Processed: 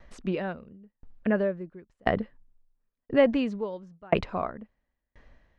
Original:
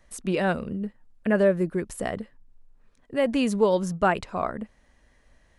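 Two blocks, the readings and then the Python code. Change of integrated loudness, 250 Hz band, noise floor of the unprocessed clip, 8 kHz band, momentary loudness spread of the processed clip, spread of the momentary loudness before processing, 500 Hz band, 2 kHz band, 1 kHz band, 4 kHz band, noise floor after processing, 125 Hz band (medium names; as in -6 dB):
-3.0 dB, -3.0 dB, -62 dBFS, under -20 dB, 18 LU, 15 LU, -3.0 dB, -4.0 dB, -5.0 dB, -4.0 dB, -83 dBFS, -5.0 dB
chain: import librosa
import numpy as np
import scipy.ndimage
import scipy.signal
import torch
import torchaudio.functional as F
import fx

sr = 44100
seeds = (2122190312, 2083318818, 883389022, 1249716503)

y = fx.air_absorb(x, sr, metres=200.0)
y = fx.tremolo_decay(y, sr, direction='decaying', hz=0.97, depth_db=37)
y = F.gain(torch.from_numpy(y), 8.5).numpy()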